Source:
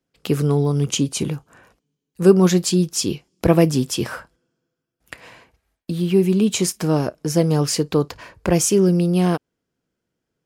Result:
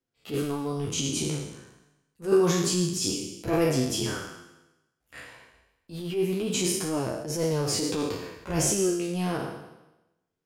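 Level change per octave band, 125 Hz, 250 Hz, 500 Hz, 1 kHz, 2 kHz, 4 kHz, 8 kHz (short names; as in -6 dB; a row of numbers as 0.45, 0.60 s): -11.5, -10.0, -7.5, -6.0, -4.5, -4.0, -4.0 dB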